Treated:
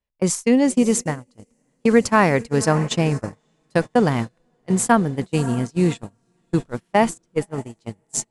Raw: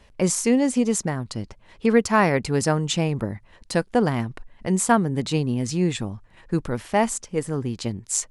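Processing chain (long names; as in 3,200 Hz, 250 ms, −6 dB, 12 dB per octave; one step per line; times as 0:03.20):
feedback delay with all-pass diffusion 580 ms, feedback 59%, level −14.5 dB
noise gate −23 dBFS, range −33 dB
automatic gain control gain up to 3 dB
level +1 dB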